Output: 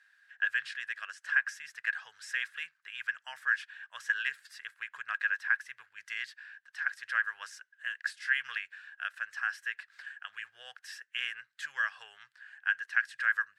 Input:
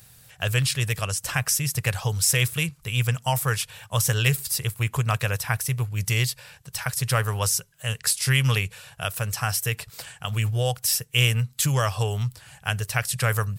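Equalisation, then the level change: ladder band-pass 1.7 kHz, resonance 85%; band-stop 2.3 kHz, Q 24; 0.0 dB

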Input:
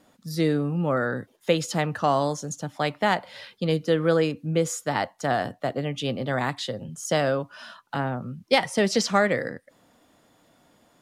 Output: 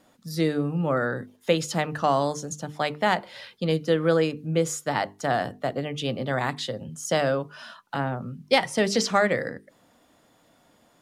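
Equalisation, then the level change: hum notches 50/100/150/200/250/300/350/400/450 Hz; 0.0 dB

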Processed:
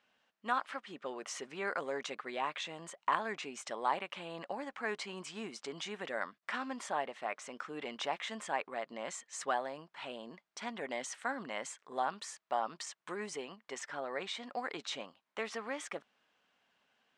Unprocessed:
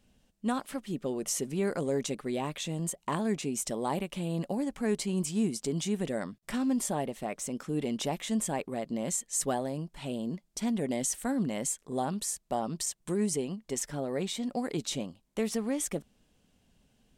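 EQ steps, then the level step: band-pass filter 1.3 kHz, Q 1.3; distance through air 88 m; tilt EQ +2.5 dB/octave; +5.5 dB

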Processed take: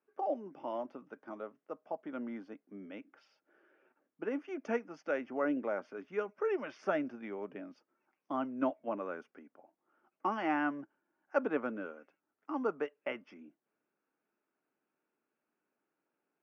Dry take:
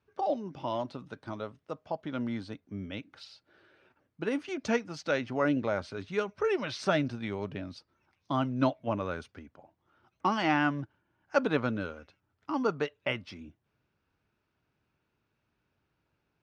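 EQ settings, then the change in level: boxcar filter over 11 samples; high-pass 240 Hz 24 dB/octave; band-stop 980 Hz, Q 18; -4.0 dB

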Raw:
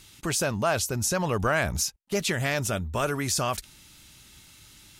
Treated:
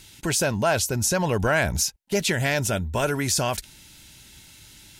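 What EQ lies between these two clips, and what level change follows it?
Butterworth band-stop 1.2 kHz, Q 6.1; +3.5 dB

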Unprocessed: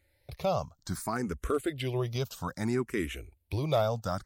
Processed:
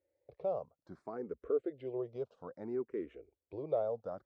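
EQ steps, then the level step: band-pass filter 470 Hz, Q 3.1; distance through air 96 m; 0.0 dB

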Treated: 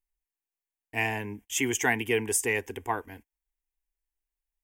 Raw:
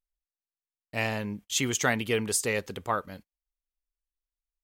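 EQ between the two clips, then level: static phaser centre 850 Hz, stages 8; +3.5 dB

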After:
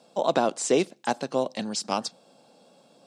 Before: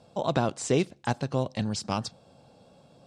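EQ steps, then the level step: high-pass 200 Hz 24 dB/octave; treble shelf 4 kHz +6.5 dB; dynamic bell 620 Hz, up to +5 dB, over -35 dBFS, Q 0.83; 0.0 dB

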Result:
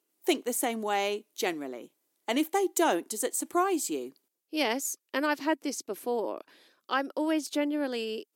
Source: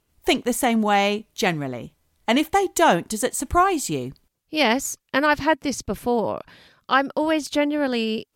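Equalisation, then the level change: ladder high-pass 280 Hz, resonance 50%; treble shelf 5.9 kHz +11 dB; -2.0 dB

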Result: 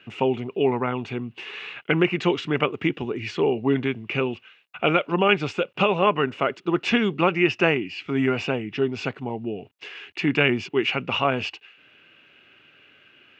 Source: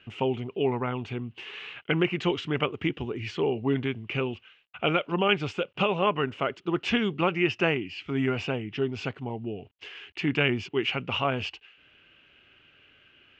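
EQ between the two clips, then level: high-pass 140 Hz; band-stop 3.1 kHz, Q 12; +5.0 dB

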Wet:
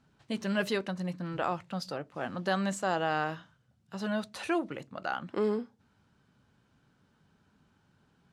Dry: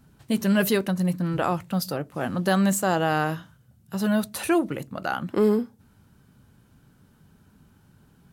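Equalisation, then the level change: distance through air 120 m; tilt EQ +2 dB/octave; peaking EQ 670 Hz +2 dB 1.6 oct; -6.5 dB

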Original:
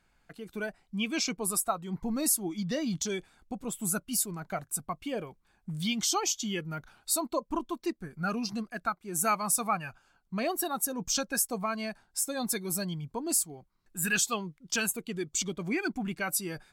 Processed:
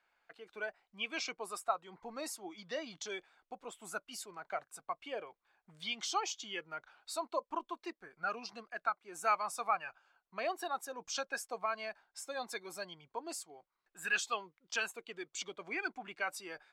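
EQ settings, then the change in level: tone controls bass -11 dB, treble -8 dB; three-band isolator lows -15 dB, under 420 Hz, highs -15 dB, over 7.2 kHz; -2.5 dB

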